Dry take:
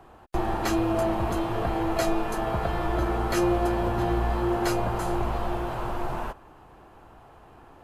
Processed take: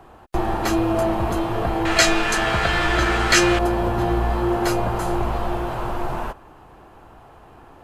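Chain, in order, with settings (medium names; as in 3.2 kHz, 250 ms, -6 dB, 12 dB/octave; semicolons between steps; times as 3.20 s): 1.85–3.59 s: high-order bell 3.5 kHz +13.5 dB 2.9 oct; trim +4.5 dB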